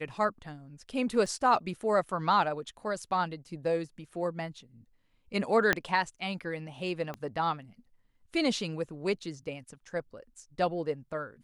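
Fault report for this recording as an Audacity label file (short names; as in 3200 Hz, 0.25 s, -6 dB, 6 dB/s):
1.260000	1.260000	gap 4.4 ms
5.730000	5.730000	pop -10 dBFS
7.140000	7.140000	pop -24 dBFS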